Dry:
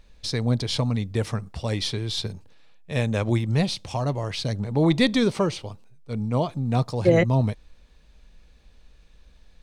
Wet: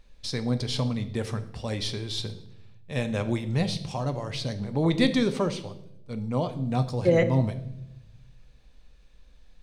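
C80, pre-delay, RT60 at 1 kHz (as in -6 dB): 16.5 dB, 4 ms, 0.65 s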